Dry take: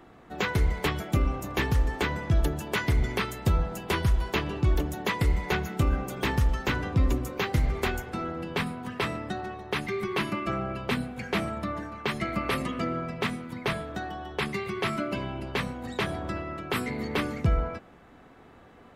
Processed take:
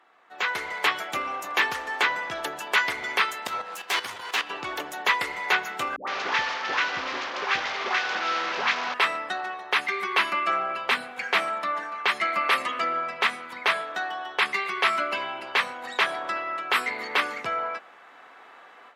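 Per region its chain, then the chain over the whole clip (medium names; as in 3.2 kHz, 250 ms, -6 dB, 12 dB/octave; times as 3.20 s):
3.47–4.50 s: comb filter that takes the minimum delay 9.8 ms + treble shelf 3.1 kHz +7.5 dB + level held to a coarse grid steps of 10 dB
5.96–8.94 s: one-bit delta coder 32 kbps, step -26 dBFS + treble shelf 4.4 kHz -7 dB + phase dispersion highs, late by 116 ms, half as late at 720 Hz
whole clip: low-pass 3.1 kHz 6 dB/octave; level rider gain up to 11.5 dB; high-pass 1 kHz 12 dB/octave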